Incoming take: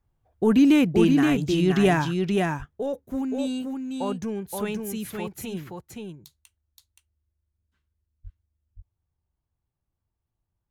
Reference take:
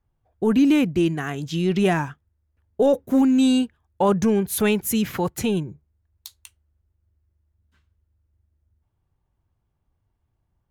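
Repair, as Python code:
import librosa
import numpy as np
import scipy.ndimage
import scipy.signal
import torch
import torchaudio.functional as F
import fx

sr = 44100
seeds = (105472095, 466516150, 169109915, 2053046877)

y = fx.fix_deplosive(x, sr, at_s=(1.3, 2.58, 8.23))
y = fx.fix_echo_inverse(y, sr, delay_ms=523, level_db=-4.0)
y = fx.gain(y, sr, db=fx.steps((0.0, 0.0), (2.47, 11.0)))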